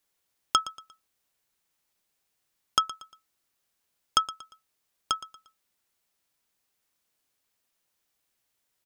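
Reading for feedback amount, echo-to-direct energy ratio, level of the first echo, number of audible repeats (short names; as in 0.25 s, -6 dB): 36%, -16.0 dB, -16.5 dB, 3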